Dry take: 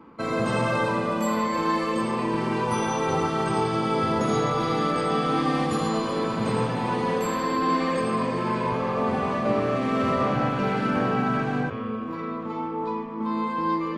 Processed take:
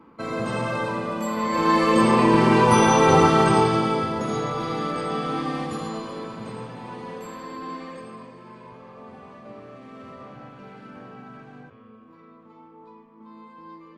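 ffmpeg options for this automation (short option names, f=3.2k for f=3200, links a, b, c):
-af "volume=9dB,afade=t=in:st=1.35:d=0.72:silence=0.266073,afade=t=out:st=3.29:d=0.81:silence=0.251189,afade=t=out:st=5.28:d=1.29:silence=0.398107,afade=t=out:st=7.66:d=0.71:silence=0.421697"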